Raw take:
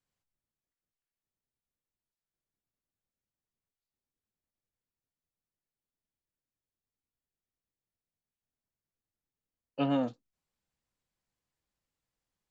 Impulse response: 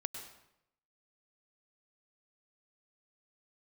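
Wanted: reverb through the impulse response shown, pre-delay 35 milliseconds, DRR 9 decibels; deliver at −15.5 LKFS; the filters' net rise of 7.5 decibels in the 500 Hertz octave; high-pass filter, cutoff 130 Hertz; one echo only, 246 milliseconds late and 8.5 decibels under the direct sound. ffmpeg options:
-filter_complex "[0:a]highpass=130,equalizer=frequency=500:width_type=o:gain=8.5,aecho=1:1:246:0.376,asplit=2[link_01][link_02];[1:a]atrim=start_sample=2205,adelay=35[link_03];[link_02][link_03]afir=irnorm=-1:irlink=0,volume=-8.5dB[link_04];[link_01][link_04]amix=inputs=2:normalize=0,volume=13.5dB"

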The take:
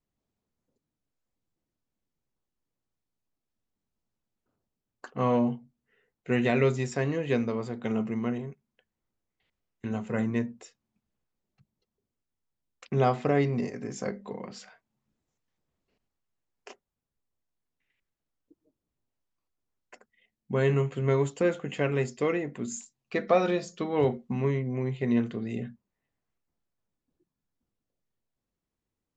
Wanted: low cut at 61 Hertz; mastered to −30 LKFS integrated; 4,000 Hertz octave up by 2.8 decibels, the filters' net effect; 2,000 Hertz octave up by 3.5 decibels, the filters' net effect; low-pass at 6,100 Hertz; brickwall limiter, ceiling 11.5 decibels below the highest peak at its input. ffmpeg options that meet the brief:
ffmpeg -i in.wav -af "highpass=61,lowpass=6100,equalizer=frequency=2000:width_type=o:gain=3.5,equalizer=frequency=4000:width_type=o:gain=3,volume=2dB,alimiter=limit=-18.5dB:level=0:latency=1" out.wav

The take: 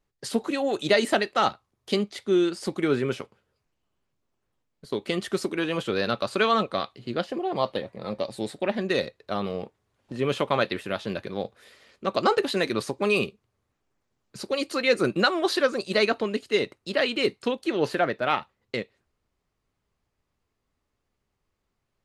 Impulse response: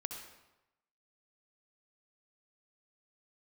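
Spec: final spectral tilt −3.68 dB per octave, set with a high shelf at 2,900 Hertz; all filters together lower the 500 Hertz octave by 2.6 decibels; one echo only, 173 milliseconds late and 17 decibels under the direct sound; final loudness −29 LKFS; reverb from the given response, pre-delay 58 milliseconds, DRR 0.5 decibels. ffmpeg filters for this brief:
-filter_complex "[0:a]equalizer=frequency=500:width_type=o:gain=-3,highshelf=frequency=2900:gain=-8,aecho=1:1:173:0.141,asplit=2[link_01][link_02];[1:a]atrim=start_sample=2205,adelay=58[link_03];[link_02][link_03]afir=irnorm=-1:irlink=0,volume=0dB[link_04];[link_01][link_04]amix=inputs=2:normalize=0,volume=-3dB"

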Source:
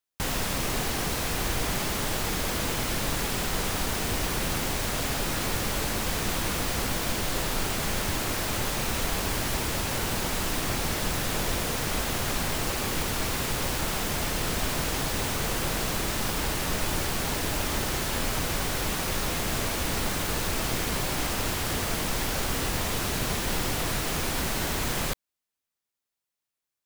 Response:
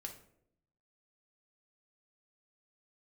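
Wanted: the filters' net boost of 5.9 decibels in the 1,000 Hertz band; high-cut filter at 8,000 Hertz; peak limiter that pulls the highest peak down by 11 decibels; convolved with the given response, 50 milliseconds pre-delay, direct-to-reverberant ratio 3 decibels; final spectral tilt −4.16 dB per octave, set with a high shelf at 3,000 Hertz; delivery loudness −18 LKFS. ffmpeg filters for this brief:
-filter_complex "[0:a]lowpass=8000,equalizer=frequency=1000:width_type=o:gain=8,highshelf=frequency=3000:gain=-5.5,alimiter=level_in=1.5dB:limit=-24dB:level=0:latency=1,volume=-1.5dB,asplit=2[link_01][link_02];[1:a]atrim=start_sample=2205,adelay=50[link_03];[link_02][link_03]afir=irnorm=-1:irlink=0,volume=0.5dB[link_04];[link_01][link_04]amix=inputs=2:normalize=0,volume=14.5dB"

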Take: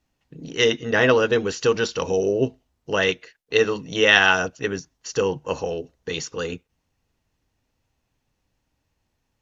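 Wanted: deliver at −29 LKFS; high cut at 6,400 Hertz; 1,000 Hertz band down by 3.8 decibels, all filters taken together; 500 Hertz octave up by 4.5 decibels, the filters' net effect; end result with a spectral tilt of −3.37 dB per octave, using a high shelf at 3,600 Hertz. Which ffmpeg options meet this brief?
ffmpeg -i in.wav -af "lowpass=6400,equalizer=frequency=500:width_type=o:gain=6.5,equalizer=frequency=1000:width_type=o:gain=-7,highshelf=frequency=3600:gain=-8.5,volume=-9dB" out.wav

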